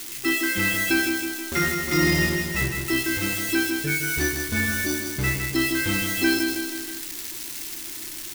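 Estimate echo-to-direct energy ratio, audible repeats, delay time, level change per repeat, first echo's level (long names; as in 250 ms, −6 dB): −4.0 dB, 4, 159 ms, −4.5 dB, −5.5 dB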